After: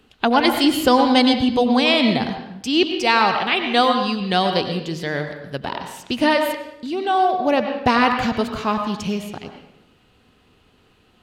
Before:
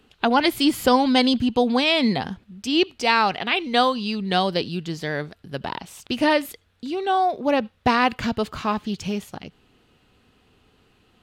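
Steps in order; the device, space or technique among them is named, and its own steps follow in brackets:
filtered reverb send (on a send: high-pass filter 300 Hz 6 dB per octave + low-pass filter 4,400 Hz 12 dB per octave + convolution reverb RT60 0.80 s, pre-delay 88 ms, DRR 5.5 dB)
on the sum: level +2 dB

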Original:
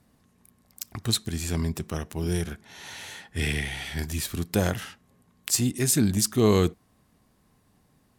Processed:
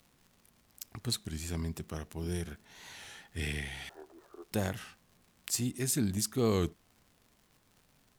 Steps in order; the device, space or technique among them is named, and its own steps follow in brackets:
0:03.89–0:04.52: elliptic band-pass filter 360–1,300 Hz
warped LP (wow of a warped record 33 1/3 rpm, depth 100 cents; surface crackle 130 per second −42 dBFS; pink noise bed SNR 34 dB)
level −8.5 dB

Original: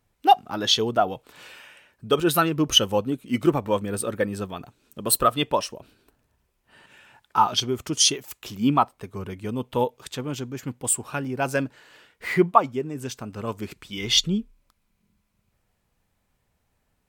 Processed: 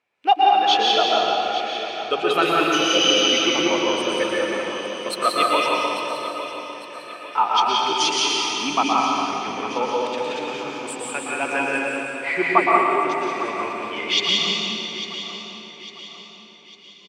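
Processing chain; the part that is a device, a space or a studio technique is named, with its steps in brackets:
healed spectral selection 0:02.78–0:03.25, 720–6,500 Hz before
station announcement (band-pass filter 420–3,700 Hz; parametric band 2,400 Hz +10 dB 0.37 octaves; loudspeakers that aren't time-aligned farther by 40 metres −10 dB, 61 metres −4 dB; convolution reverb RT60 2.6 s, pre-delay 112 ms, DRR −2.5 dB)
high-shelf EQ 7,700 Hz +6 dB
repeating echo 851 ms, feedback 44%, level −12 dB
level −1 dB

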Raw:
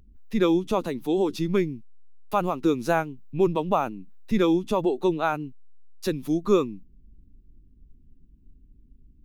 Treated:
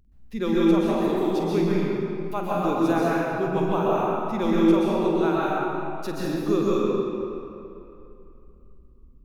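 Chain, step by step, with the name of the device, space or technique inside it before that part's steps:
tunnel (flutter between parallel walls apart 8.3 metres, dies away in 0.32 s; convolution reverb RT60 2.8 s, pre-delay 118 ms, DRR −7 dB)
level −6.5 dB

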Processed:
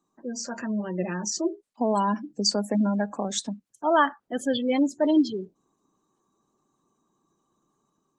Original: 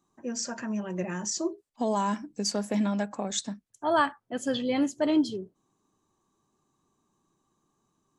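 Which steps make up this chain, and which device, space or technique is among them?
0:01.42–0:02.61: dynamic equaliser 4,800 Hz, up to +5 dB, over −45 dBFS, Q 1.1
noise-suppressed video call (high-pass filter 140 Hz 24 dB per octave; gate on every frequency bin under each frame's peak −25 dB strong; automatic gain control gain up to 3.5 dB; Opus 24 kbit/s 48,000 Hz)

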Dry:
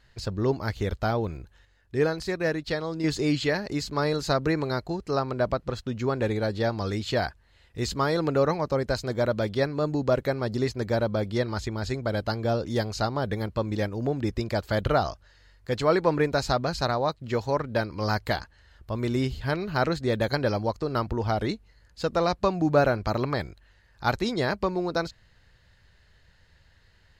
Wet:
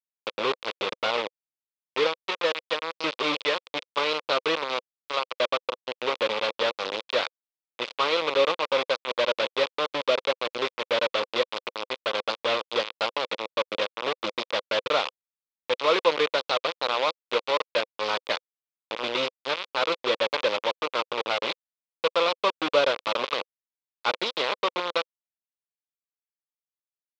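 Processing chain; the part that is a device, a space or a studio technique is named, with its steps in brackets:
0:04.88–0:05.40: low-shelf EQ 400 Hz −6 dB
hand-held game console (bit reduction 4 bits; loudspeaker in its box 490–4,400 Hz, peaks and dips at 510 Hz +7 dB, 720 Hz −7 dB, 1,100 Hz +4 dB, 1,700 Hz −6 dB, 2,500 Hz +4 dB, 3,500 Hz +6 dB)

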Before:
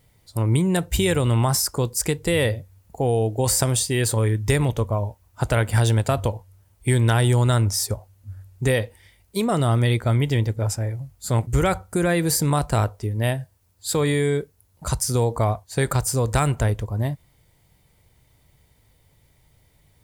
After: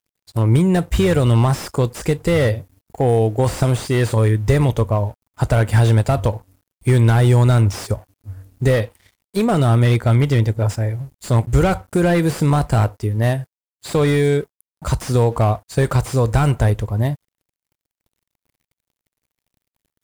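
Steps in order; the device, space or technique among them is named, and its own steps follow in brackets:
early transistor amplifier (dead-zone distortion −52 dBFS; slew-rate limiting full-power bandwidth 89 Hz)
level +5.5 dB

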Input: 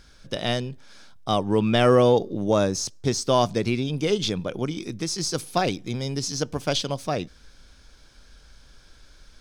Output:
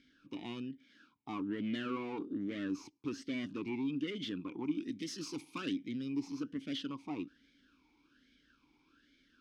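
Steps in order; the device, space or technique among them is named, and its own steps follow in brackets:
talk box (tube saturation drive 25 dB, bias 0.45; formant filter swept between two vowels i-u 1.2 Hz)
0:04.88–0:05.73: high-shelf EQ 3,200 Hz +10.5 dB
level +4 dB

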